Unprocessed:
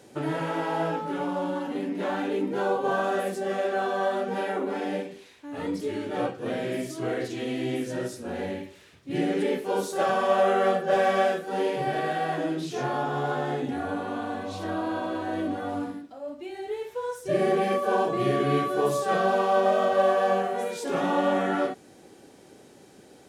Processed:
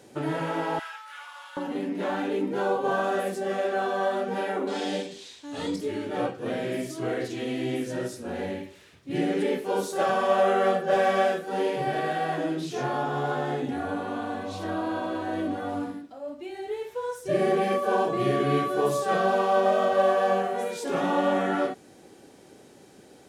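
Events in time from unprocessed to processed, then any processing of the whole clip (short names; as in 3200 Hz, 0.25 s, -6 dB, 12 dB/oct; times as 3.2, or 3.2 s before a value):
0.79–1.57 HPF 1300 Hz 24 dB/oct
4.67–5.76 band shelf 5200 Hz +12 dB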